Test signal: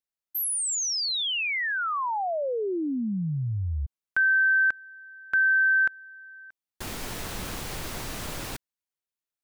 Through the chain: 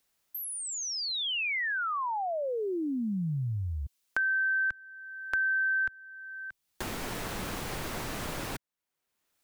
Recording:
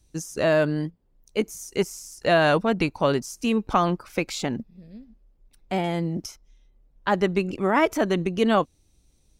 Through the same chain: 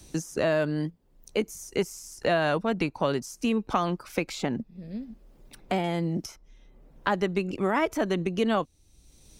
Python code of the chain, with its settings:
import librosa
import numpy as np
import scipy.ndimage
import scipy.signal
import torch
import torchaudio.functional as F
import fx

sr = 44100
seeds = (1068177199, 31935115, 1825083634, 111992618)

y = fx.band_squash(x, sr, depth_pct=70)
y = y * librosa.db_to_amplitude(-4.0)